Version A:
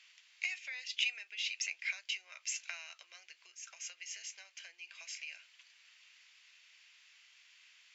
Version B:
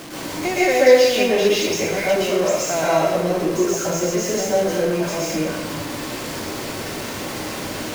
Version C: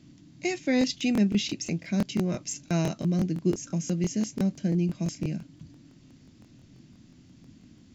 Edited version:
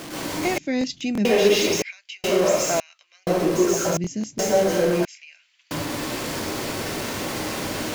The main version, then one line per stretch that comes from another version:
B
0:00.58–0:01.25: punch in from C
0:01.82–0:02.24: punch in from A
0:02.80–0:03.27: punch in from A
0:03.97–0:04.39: punch in from C
0:05.05–0:05.71: punch in from A

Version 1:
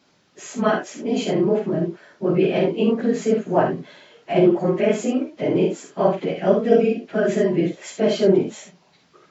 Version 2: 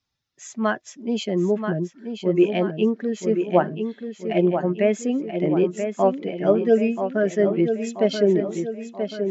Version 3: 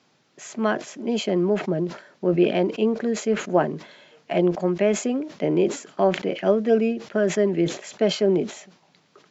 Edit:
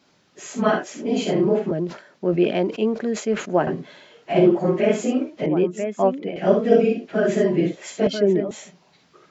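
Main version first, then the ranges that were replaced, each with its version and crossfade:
1
0:01.71–0:03.67: punch in from 3
0:05.46–0:06.36: punch in from 2
0:08.07–0:08.51: punch in from 2

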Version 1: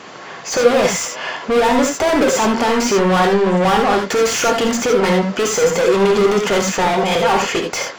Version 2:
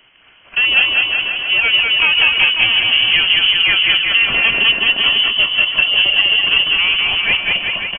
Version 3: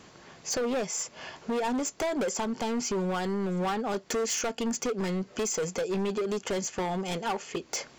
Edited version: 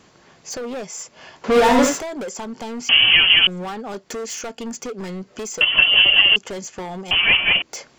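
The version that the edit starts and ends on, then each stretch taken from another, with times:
3
0:01.44–0:02.00: punch in from 1
0:02.89–0:03.47: punch in from 2
0:05.61–0:06.36: punch in from 2
0:07.11–0:07.62: punch in from 2

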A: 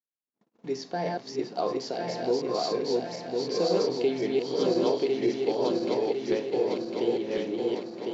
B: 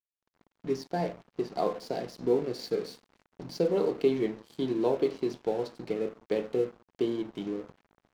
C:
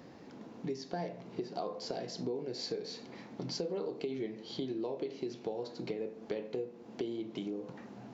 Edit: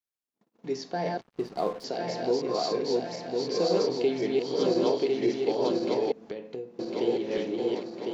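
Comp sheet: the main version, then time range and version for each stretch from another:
A
0:01.21–0:01.84: punch in from B
0:06.12–0:06.79: punch in from C

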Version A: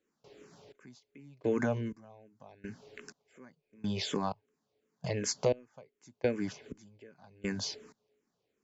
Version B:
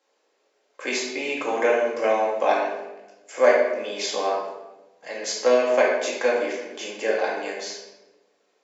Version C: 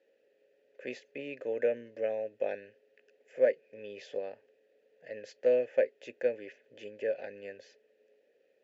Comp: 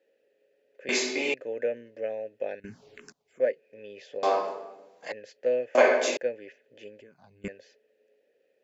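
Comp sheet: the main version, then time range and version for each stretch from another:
C
0:00.89–0:01.34: punch in from B
0:02.60–0:03.40: punch in from A
0:04.23–0:05.12: punch in from B
0:05.75–0:06.17: punch in from B
0:07.01–0:07.48: punch in from A

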